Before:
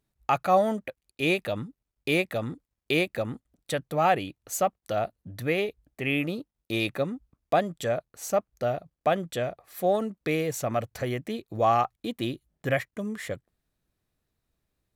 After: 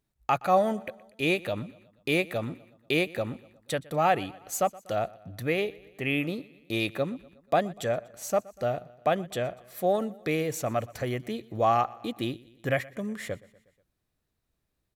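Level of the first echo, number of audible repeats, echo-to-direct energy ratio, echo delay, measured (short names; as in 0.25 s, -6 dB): -22.0 dB, 3, -20.5 dB, 0.121 s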